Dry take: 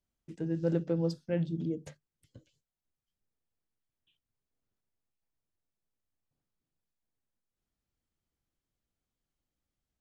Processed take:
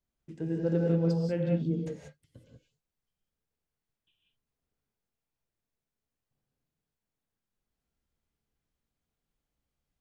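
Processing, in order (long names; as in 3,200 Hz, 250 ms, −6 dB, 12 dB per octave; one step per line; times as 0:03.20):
high-shelf EQ 4,500 Hz −5.5 dB
reverb whose tail is shaped and stops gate 210 ms rising, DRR −0.5 dB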